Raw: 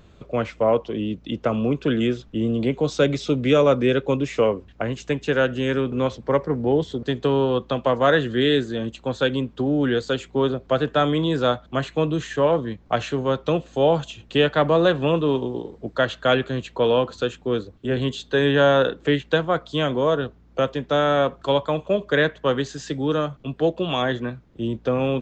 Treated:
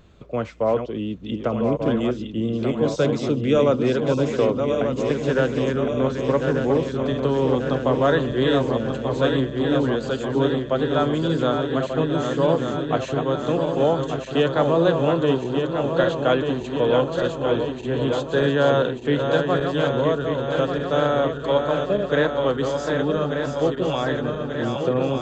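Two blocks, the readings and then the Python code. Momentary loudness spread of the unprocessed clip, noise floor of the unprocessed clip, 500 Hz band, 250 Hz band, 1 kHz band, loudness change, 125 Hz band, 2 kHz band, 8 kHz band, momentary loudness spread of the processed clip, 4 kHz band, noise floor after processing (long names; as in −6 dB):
8 LU, −51 dBFS, +0.5 dB, +1.0 dB, −0.5 dB, +0.5 dB, +1.0 dB, −2.0 dB, can't be measured, 5 LU, −3.0 dB, −32 dBFS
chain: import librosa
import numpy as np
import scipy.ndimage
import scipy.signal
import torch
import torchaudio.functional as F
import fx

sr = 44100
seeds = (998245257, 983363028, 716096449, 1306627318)

y = fx.reverse_delay_fb(x, sr, ms=594, feedback_pct=79, wet_db=-5.5)
y = fx.dynamic_eq(y, sr, hz=2500.0, q=0.95, threshold_db=-38.0, ratio=4.0, max_db=-5)
y = y * 10.0 ** (-1.5 / 20.0)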